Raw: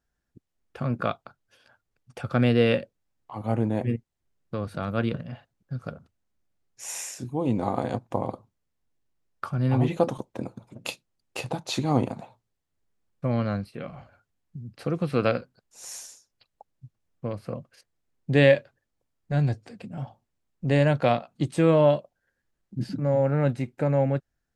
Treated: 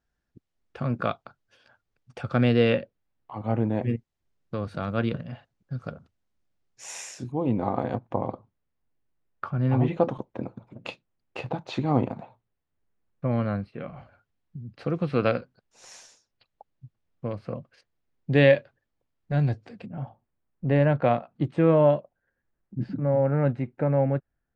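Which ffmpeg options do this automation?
-af "asetnsamples=n=441:p=0,asendcmd='2.7 lowpass f 3400;3.83 lowpass f 6200;7.32 lowpass f 2600;13.96 lowpass f 4100;19.86 lowpass f 2000',lowpass=5.9k"

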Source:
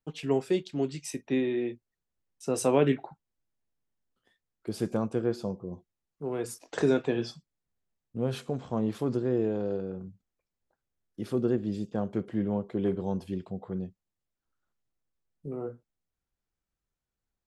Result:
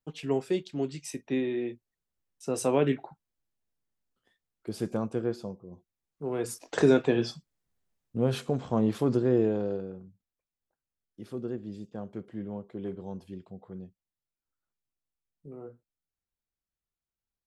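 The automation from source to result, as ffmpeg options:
-af "volume=11dB,afade=t=out:st=5.26:d=0.39:silence=0.421697,afade=t=in:st=5.65:d=1.02:silence=0.237137,afade=t=out:st=9.37:d=0.69:silence=0.266073"

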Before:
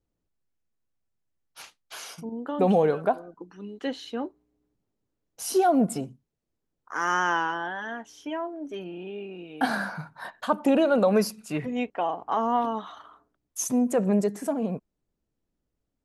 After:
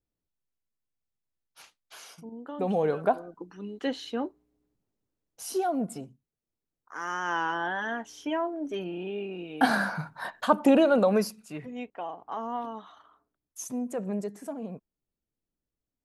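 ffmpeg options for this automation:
-af "volume=11dB,afade=t=in:st=2.7:d=0.46:silence=0.398107,afade=t=out:st=4.15:d=1.62:silence=0.375837,afade=t=in:st=7.21:d=0.53:silence=0.298538,afade=t=out:st=10.58:d=0.96:silence=0.266073"

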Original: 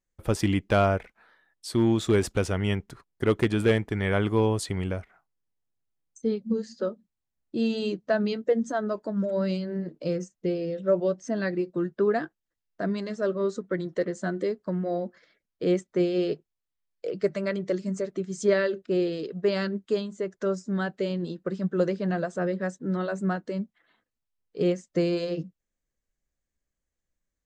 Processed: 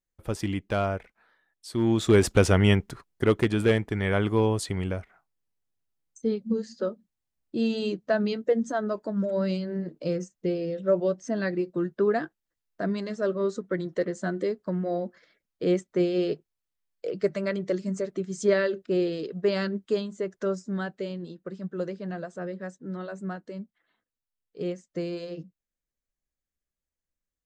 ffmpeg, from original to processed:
-af "volume=7.5dB,afade=t=in:st=1.73:d=0.81:silence=0.237137,afade=t=out:st=2.54:d=0.86:silence=0.421697,afade=t=out:st=20.33:d=0.95:silence=0.446684"

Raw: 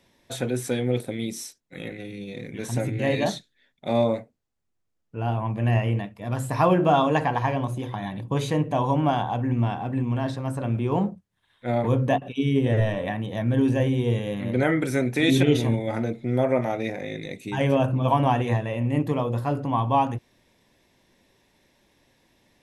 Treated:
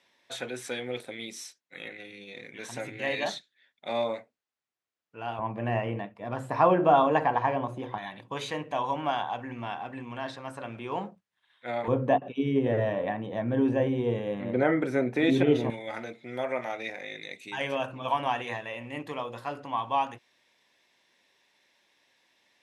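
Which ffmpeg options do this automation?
-af "asetnsamples=n=441:p=0,asendcmd='5.39 bandpass f 840;7.98 bandpass f 2200;11.88 bandpass f 680;15.7 bandpass f 2700',bandpass=f=2.2k:t=q:w=0.53:csg=0"

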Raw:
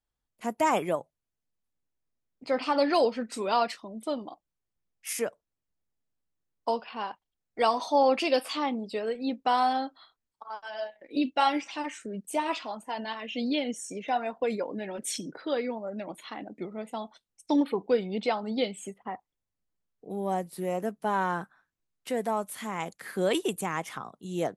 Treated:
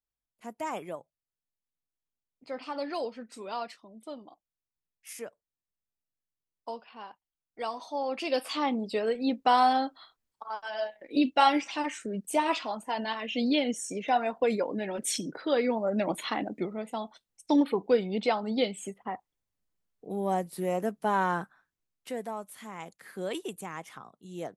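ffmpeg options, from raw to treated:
-af "volume=10dB,afade=t=in:st=8.08:d=0.74:silence=0.237137,afade=t=in:st=15.52:d=0.66:silence=0.421697,afade=t=out:st=16.18:d=0.62:silence=0.354813,afade=t=out:st=21.37:d=0.96:silence=0.354813"

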